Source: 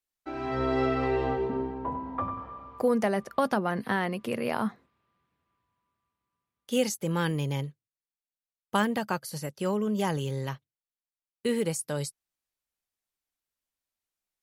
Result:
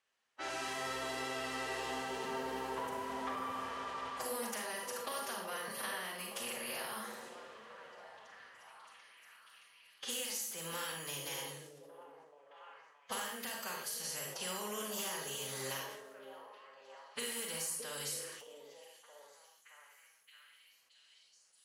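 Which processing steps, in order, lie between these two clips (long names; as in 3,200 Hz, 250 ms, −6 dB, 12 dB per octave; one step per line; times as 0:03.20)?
compressor on every frequency bin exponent 0.6
low-pass that shuts in the quiet parts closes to 2,400 Hz, open at −24 dBFS
noise gate −54 dBFS, range −12 dB
first-order pre-emphasis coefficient 0.97
hum removal 75.57 Hz, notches 5
dynamic equaliser 8,400 Hz, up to −5 dB, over −51 dBFS, Q 1.1
downward compressor 8 to 1, threshold −47 dBFS, peak gain reduction 15.5 dB
phase-vocoder stretch with locked phases 1.5×
pitch vibrato 12 Hz 27 cents
echo through a band-pass that steps 621 ms, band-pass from 400 Hz, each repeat 0.7 octaves, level −5 dB
convolution reverb RT60 0.50 s, pre-delay 34 ms, DRR 1 dB
level that may fall only so fast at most 47 dB per second
level +8 dB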